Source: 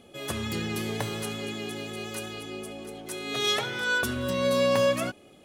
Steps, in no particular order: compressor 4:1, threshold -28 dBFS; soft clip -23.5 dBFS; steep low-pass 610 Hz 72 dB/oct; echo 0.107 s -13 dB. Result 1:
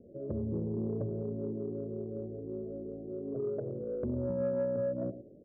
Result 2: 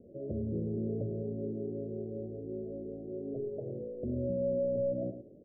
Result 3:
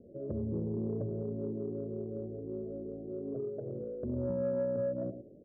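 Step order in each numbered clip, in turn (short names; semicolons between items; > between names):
steep low-pass > compressor > echo > soft clip; echo > soft clip > compressor > steep low-pass; echo > compressor > steep low-pass > soft clip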